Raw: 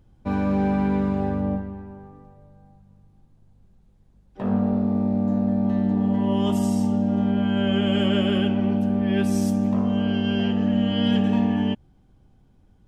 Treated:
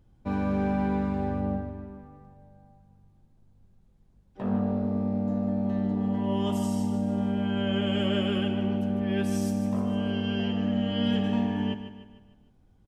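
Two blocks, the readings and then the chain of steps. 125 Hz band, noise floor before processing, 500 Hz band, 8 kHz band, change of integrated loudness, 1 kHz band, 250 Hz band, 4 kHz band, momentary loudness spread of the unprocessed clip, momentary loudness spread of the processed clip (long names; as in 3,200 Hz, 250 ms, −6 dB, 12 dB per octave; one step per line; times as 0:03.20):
−5.0 dB, −57 dBFS, −4.0 dB, can't be measured, −5.5 dB, −4.0 dB, −6.0 dB, −4.0 dB, 5 LU, 5 LU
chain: repeating echo 151 ms, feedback 47%, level −10.5 dB
level −4.5 dB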